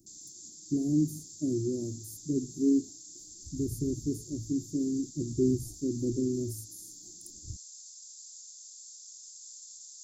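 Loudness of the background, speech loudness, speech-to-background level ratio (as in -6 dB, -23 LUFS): -46.0 LUFS, -31.5 LUFS, 14.5 dB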